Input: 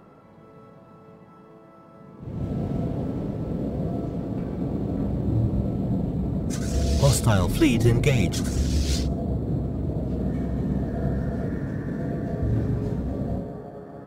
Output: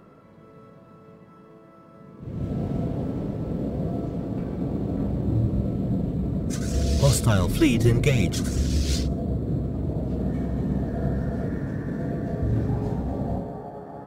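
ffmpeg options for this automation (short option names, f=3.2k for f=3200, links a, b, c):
-af "asetnsamples=n=441:p=0,asendcmd='2.5 equalizer g -1;5.36 equalizer g -7;9.74 equalizer g 1;12.69 equalizer g 12.5',equalizer=f=820:t=o:w=0.3:g=-8.5"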